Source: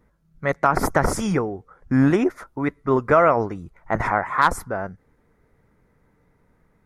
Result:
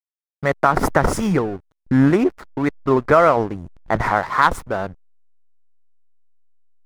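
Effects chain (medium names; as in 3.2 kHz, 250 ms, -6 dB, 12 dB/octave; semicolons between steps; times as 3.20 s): in parallel at -1 dB: compression 5:1, threshold -31 dBFS, peak gain reduction 17.5 dB; on the sum: hysteresis with a dead band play -28 dBFS; trim +1.5 dB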